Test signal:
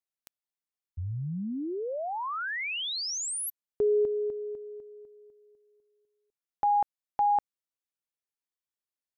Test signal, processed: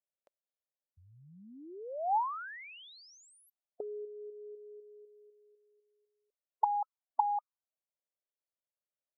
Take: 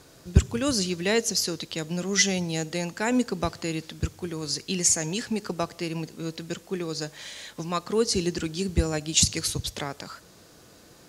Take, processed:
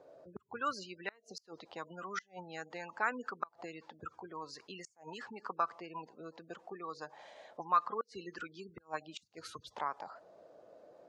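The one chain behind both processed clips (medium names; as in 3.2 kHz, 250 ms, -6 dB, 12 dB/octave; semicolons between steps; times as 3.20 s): spectral gate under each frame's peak -25 dB strong; inverted gate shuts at -13 dBFS, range -30 dB; auto-wah 570–1300 Hz, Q 5.5, up, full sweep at -24.5 dBFS; trim +6.5 dB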